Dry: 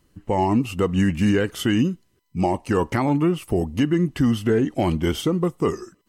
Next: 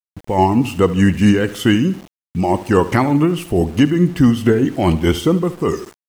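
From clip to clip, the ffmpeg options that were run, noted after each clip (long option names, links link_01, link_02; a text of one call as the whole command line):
ffmpeg -i in.wav -af "tremolo=f=4.7:d=0.51,aecho=1:1:73|146|219|292:0.168|0.0789|0.0371|0.0174,aeval=exprs='val(0)*gte(abs(val(0)),0.00668)':channel_layout=same,volume=8dB" out.wav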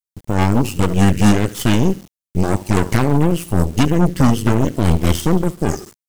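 ffmpeg -i in.wav -af "bass=frequency=250:gain=9,treble=frequency=4000:gain=11,aeval=exprs='1.5*(cos(1*acos(clip(val(0)/1.5,-1,1)))-cos(1*PI/2))+0.299*(cos(8*acos(clip(val(0)/1.5,-1,1)))-cos(8*PI/2))':channel_layout=same,volume=-7dB" out.wav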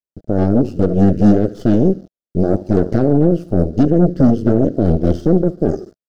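ffmpeg -i in.wav -af "firequalizer=gain_entry='entry(130,0);entry(180,4);entry(330,7);entry(640,8);entry(960,-16);entry(1400,-4);entry(2200,-20);entry(4800,-9);entry(8400,-26)':delay=0.05:min_phase=1,volume=-2dB" out.wav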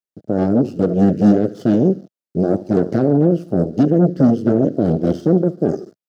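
ffmpeg -i in.wav -af "highpass=frequency=120:width=0.5412,highpass=frequency=120:width=1.3066,volume=-1dB" out.wav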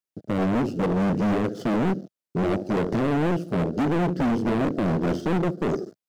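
ffmpeg -i in.wav -af "volume=20.5dB,asoftclip=hard,volume=-20.5dB" out.wav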